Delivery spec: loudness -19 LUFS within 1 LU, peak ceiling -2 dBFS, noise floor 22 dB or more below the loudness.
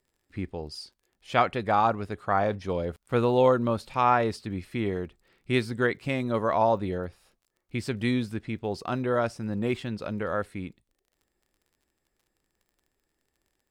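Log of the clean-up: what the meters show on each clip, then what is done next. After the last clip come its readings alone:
tick rate 37 per s; loudness -27.5 LUFS; peak level -7.0 dBFS; loudness target -19.0 LUFS
-> de-click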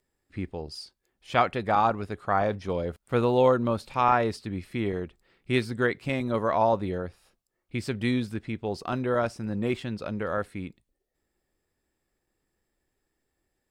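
tick rate 0.29 per s; loudness -27.5 LUFS; peak level -7.0 dBFS; loudness target -19.0 LUFS
-> trim +8.5 dB; peak limiter -2 dBFS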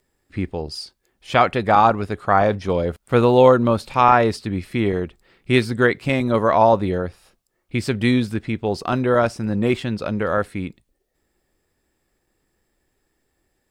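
loudness -19.5 LUFS; peak level -2.0 dBFS; noise floor -72 dBFS

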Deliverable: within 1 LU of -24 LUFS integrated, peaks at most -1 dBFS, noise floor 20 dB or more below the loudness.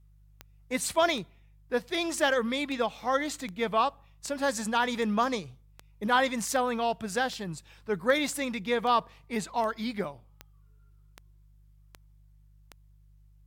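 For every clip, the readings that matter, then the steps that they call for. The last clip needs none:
clicks found 17; hum 50 Hz; highest harmonic 150 Hz; hum level -55 dBFS; loudness -29.0 LUFS; peak level -13.0 dBFS; loudness target -24.0 LUFS
-> de-click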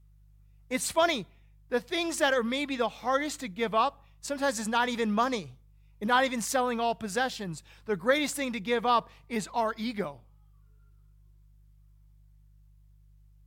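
clicks found 0; hum 50 Hz; highest harmonic 150 Hz; hum level -55 dBFS
-> de-hum 50 Hz, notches 3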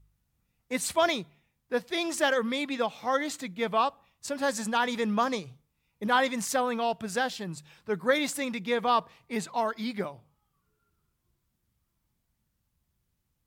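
hum not found; loudness -29.0 LUFS; peak level -13.0 dBFS; loudness target -24.0 LUFS
-> trim +5 dB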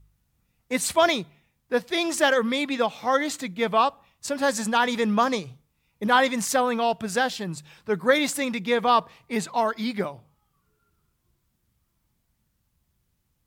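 loudness -24.0 LUFS; peak level -8.0 dBFS; noise floor -73 dBFS

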